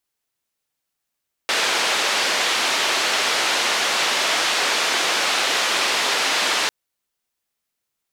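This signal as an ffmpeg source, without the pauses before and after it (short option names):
-f lavfi -i "anoisesrc=c=white:d=5.2:r=44100:seed=1,highpass=f=410,lowpass=f=4200,volume=-8.4dB"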